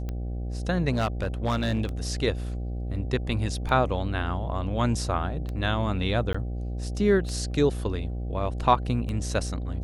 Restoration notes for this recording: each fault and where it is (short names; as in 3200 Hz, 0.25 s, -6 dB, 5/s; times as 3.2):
buzz 60 Hz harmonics 13 -31 dBFS
tick 33 1/3 rpm -21 dBFS
0.91–1.86 clipped -20.5 dBFS
6.33–6.34 gap 15 ms